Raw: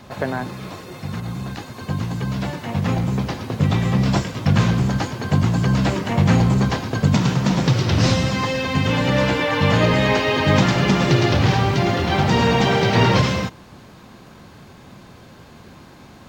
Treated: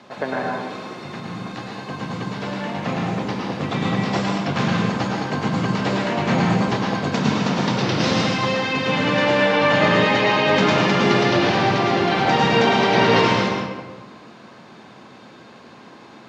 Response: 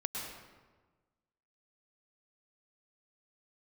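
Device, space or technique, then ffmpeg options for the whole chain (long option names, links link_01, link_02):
supermarket ceiling speaker: -filter_complex "[0:a]highpass=240,lowpass=5600[link_01];[1:a]atrim=start_sample=2205[link_02];[link_01][link_02]afir=irnorm=-1:irlink=0"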